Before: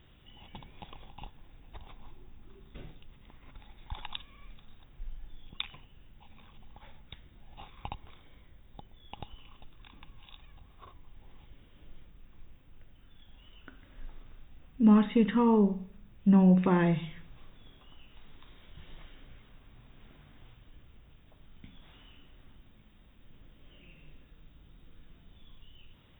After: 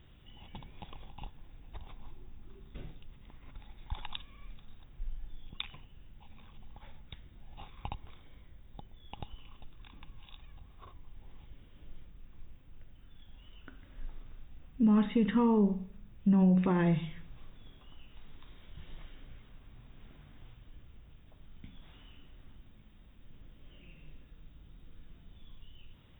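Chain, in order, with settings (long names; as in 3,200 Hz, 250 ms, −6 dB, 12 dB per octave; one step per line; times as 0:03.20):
low-shelf EQ 210 Hz +4.5 dB
brickwall limiter −17 dBFS, peak gain reduction 6.5 dB
level −2 dB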